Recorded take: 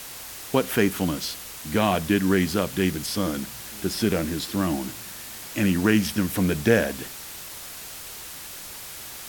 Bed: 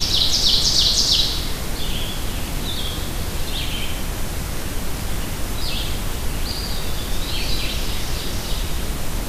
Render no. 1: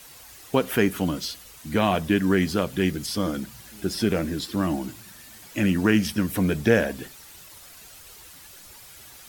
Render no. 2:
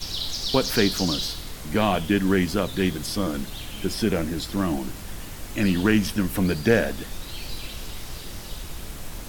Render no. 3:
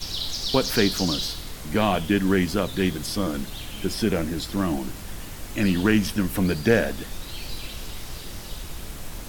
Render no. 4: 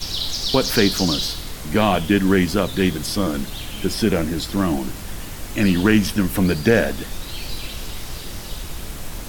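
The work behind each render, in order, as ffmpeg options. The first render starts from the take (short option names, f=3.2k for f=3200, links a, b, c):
-af "afftdn=nr=10:nf=-39"
-filter_complex "[1:a]volume=-12dB[a];[0:a][a]amix=inputs=2:normalize=0"
-af anull
-af "volume=4.5dB,alimiter=limit=-3dB:level=0:latency=1"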